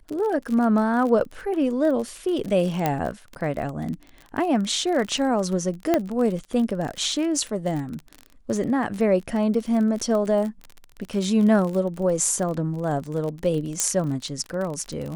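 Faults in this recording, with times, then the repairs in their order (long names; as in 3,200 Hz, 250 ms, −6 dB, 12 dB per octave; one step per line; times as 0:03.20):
surface crackle 35 per second −28 dBFS
0:02.86: click −8 dBFS
0:05.94: click −7 dBFS
0:13.80: click −6 dBFS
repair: click removal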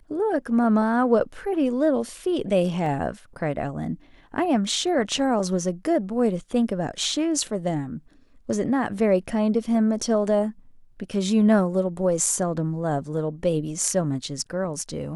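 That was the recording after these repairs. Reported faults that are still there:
0:02.86: click
0:13.80: click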